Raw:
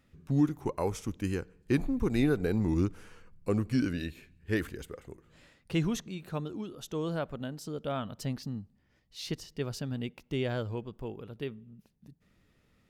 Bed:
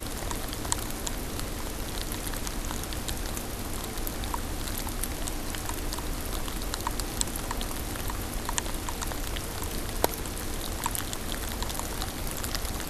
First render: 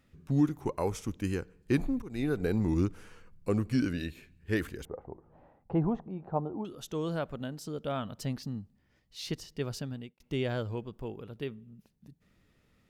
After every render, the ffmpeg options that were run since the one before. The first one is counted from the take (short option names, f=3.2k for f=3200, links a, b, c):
-filter_complex "[0:a]asettb=1/sr,asplit=3[a][b][c];[a]atrim=end=4.854[d];[b]atrim=start=4.85:end=6.65,asetpts=PTS-STARTPTS,afade=t=in:d=0.004:c=qsin,afade=t=out:st=1.796:d=0.004:c=qsin,lowpass=f=810:t=q:w=4.5[e];[c]atrim=start=6.646[f];[d][e]acrossfade=d=0.004:c1=hsin:c2=qsin[g];[g][f]acrossfade=d=0.004:c1=qsin:c2=hsin,asplit=3[h][i][j];[h]atrim=end=2.02,asetpts=PTS-STARTPTS,afade=t=out:st=2.016:d=0.004:c=hsin:silence=0.0944061[k];[i]atrim=start=2.02:end=10.2,asetpts=PTS-STARTPTS,afade=t=in:d=0.44:silence=0.0944061,afade=t=out:st=7.76:d=0.42[l];[j]atrim=start=10.2,asetpts=PTS-STARTPTS,afade=t=in:d=0.004:c=hsin[m];[k][l][m]concat=n=3:v=0:a=1"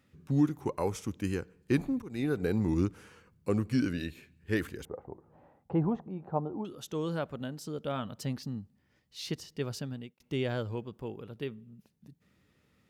-af "highpass=74,bandreject=f=670:w=18"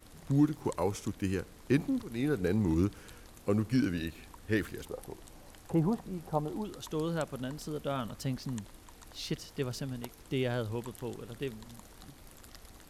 -filter_complex "[1:a]volume=-20.5dB[a];[0:a][a]amix=inputs=2:normalize=0"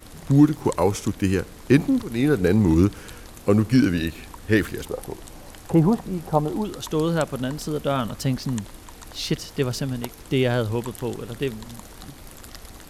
-af "volume=11dB"